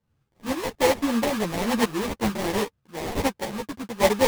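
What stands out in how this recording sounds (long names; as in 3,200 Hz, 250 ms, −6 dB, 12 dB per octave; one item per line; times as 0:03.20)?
aliases and images of a low sample rate 1,400 Hz, jitter 20%
sample-and-hold tremolo
a shimmering, thickened sound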